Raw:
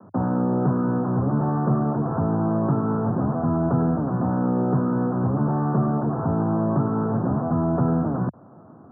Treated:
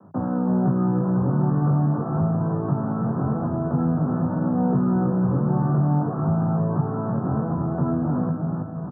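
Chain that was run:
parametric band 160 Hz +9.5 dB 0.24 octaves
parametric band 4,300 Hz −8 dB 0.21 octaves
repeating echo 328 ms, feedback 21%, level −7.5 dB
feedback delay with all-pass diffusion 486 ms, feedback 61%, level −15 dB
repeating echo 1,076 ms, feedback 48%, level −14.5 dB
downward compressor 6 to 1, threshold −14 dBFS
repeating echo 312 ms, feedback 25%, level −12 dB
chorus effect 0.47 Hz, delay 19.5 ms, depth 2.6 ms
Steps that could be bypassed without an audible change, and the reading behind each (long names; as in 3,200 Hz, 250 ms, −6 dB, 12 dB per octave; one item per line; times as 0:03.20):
parametric band 4,300 Hz: nothing at its input above 1,000 Hz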